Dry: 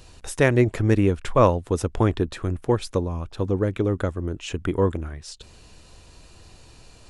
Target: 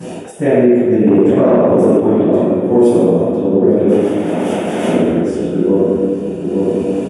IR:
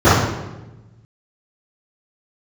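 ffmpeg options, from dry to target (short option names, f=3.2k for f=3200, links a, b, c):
-filter_complex "[0:a]asettb=1/sr,asplit=3[a][b][c];[a]atrim=end=2.674[d];[b]atrim=start=2.67:end=3.34,asetpts=PTS-STARTPTS,afade=t=in:d=0.004:c=qsin,afade=t=out:st=0.666:d=0.004:c=qsin,highshelf=f=4.4k:g=11[e];[c]atrim=start=3.336[f];[d][e]acrossfade=d=0.004:c1=hsin:c2=qsin[g];[g][f]acrossfade=d=0.004:c1=qsin:c2=hsin,asplit=2[h][i];[i]adelay=860,lowpass=f=1.2k:p=1,volume=-8dB,asplit=2[j][k];[k]adelay=860,lowpass=f=1.2k:p=1,volume=0.33,asplit=2[l][m];[m]adelay=860,lowpass=f=1.2k:p=1,volume=0.33,asplit=2[n][o];[o]adelay=860,lowpass=f=1.2k:p=1,volume=0.33[p];[h][j][l][n][p]amix=inputs=5:normalize=0,asettb=1/sr,asplit=3[q][r][s];[q]atrim=end=3.884[t];[r]atrim=start=3.88:end=4.88,asetpts=PTS-STARTPTS,afade=t=in:d=0.004:c=qsin,afade=t=out:st=0.996:d=0.004:c=qsin,aeval=exprs='(mod(20*val(0)+1,2)-1)/20':c=same[u];[s]atrim=start=4.876[v];[t][u]acrossfade=d=0.004:c1=hsin:c2=qsin[w];[w][v]acrossfade=d=0.004:c1=qsin:c2=hsin[x];[1:a]atrim=start_sample=2205,asetrate=22491,aresample=44100[y];[x][y]afir=irnorm=-1:irlink=0,dynaudnorm=f=320:g=3:m=11.5dB,equalizer=f=1k:t=o:w=0.67:g=-5,equalizer=f=4k:t=o:w=0.67:g=-7,equalizer=f=10k:t=o:w=0.67:g=8,asettb=1/sr,asplit=3[z][aa][ab];[z]atrim=end=1.074[ac];[aa]atrim=start=1.07:end=2,asetpts=PTS-STARTPTS,afade=t=in:d=0.004:c=qsin,afade=t=out:st=0.926:d=0.004:c=qsin,acontrast=58[ad];[ab]atrim=start=1.996[ae];[ac][ad]acrossfade=d=0.004:c1=hsin:c2=qsin[af];[af][ae]acrossfade=d=0.004:c1=qsin:c2=hsin,highpass=f=200:w=0.5412,highpass=f=200:w=1.3066,alimiter=level_in=7dB:limit=-1dB:release=50:level=0:latency=1,volume=-1dB"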